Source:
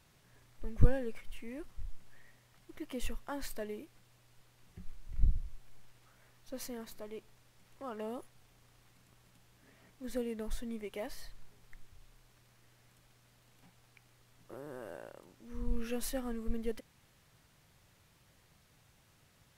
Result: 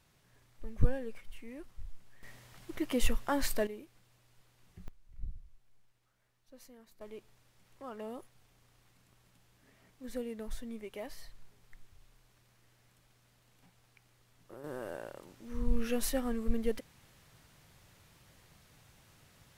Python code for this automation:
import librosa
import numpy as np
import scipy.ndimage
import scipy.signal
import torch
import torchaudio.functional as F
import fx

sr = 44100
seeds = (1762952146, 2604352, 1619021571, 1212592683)

y = fx.gain(x, sr, db=fx.steps((0.0, -2.5), (2.23, 9.0), (3.67, -2.0), (4.88, -13.0), (7.01, -2.0), (14.64, 4.5)))